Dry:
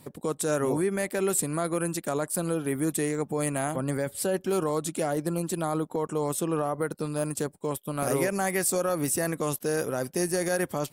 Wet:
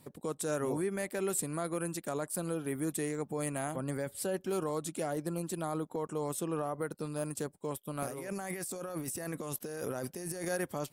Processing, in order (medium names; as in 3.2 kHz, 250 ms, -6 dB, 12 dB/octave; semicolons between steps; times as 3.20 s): 8.06–10.45 s: compressor with a negative ratio -32 dBFS, ratio -1; trim -7 dB